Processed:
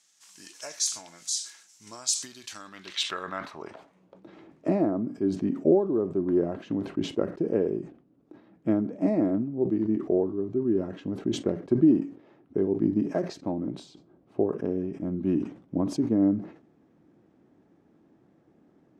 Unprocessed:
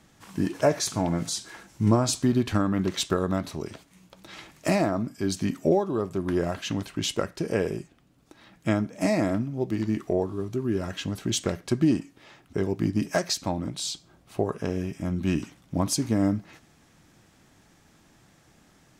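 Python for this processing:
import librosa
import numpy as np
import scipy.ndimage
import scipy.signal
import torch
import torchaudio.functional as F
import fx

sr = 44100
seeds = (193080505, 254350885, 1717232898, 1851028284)

y = fx.filter_sweep_bandpass(x, sr, from_hz=6600.0, to_hz=330.0, start_s=2.51, end_s=4.28, q=1.5)
y = fx.sustainer(y, sr, db_per_s=130.0)
y = y * 10.0 ** (3.5 / 20.0)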